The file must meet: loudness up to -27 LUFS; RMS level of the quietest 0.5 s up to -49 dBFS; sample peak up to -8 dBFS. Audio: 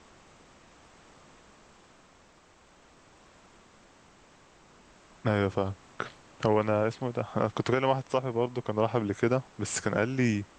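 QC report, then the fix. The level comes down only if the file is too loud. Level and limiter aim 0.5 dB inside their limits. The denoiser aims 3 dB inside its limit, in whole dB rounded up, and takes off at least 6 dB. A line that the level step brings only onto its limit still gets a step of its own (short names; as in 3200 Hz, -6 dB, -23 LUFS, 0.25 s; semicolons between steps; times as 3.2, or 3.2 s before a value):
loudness -29.5 LUFS: OK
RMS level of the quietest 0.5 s -59 dBFS: OK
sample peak -10.5 dBFS: OK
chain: none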